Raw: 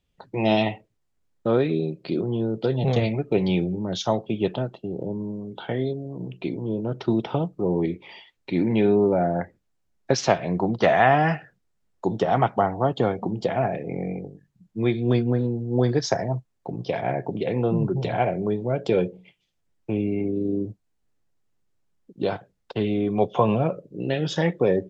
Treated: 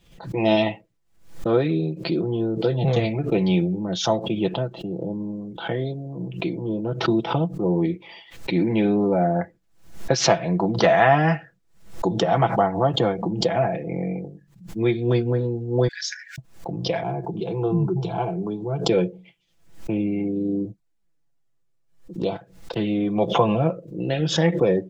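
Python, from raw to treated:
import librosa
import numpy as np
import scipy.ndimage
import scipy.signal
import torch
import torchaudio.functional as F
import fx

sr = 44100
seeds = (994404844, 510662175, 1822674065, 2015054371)

y = fx.brickwall_highpass(x, sr, low_hz=1400.0, at=(15.88, 16.38))
y = fx.fixed_phaser(y, sr, hz=380.0, stages=8, at=(17.03, 18.89))
y = fx.env_flanger(y, sr, rest_ms=7.9, full_db=-25.5, at=(20.69, 22.34), fade=0.02)
y = y + 0.52 * np.pad(y, (int(6.0 * sr / 1000.0), 0))[:len(y)]
y = fx.pre_swell(y, sr, db_per_s=110.0)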